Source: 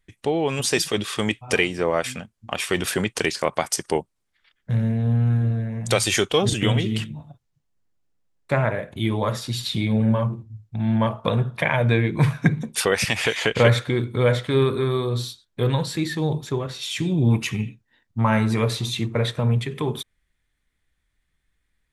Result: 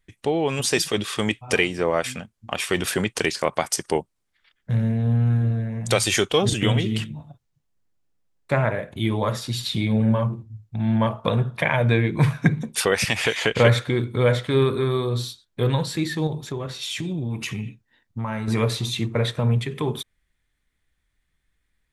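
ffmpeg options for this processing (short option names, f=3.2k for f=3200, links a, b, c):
-filter_complex "[0:a]asettb=1/sr,asplit=3[a][b][c];[a]atrim=end=16.274[d];[b]atrim=start=16.27:end=18.48,asetpts=PTS-STARTPTS,afade=t=in:d=0.004:c=qsin,afade=t=out:st=2.206:d=0.004:c=qsin,acompressor=threshold=-25dB:ratio=4:attack=3.2:release=140:knee=1:detection=peak[e];[c]atrim=start=18.476[f];[d][e]acrossfade=d=0.004:c1=hsin:c2=qsin[g];[g][f]acrossfade=d=0.004:c1=qsin:c2=hsin"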